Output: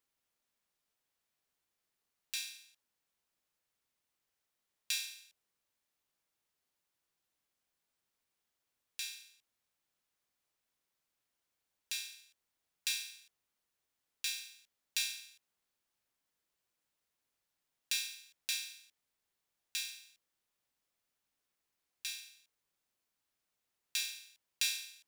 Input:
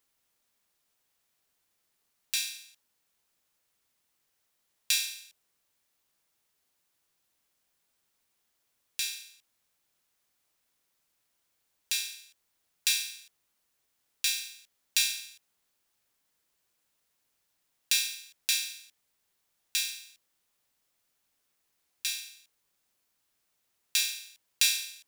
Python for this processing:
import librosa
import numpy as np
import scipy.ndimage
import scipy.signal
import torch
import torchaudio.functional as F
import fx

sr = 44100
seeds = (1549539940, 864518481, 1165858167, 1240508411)

y = fx.high_shelf(x, sr, hz=5300.0, db=-4.0)
y = F.gain(torch.from_numpy(y), -7.0).numpy()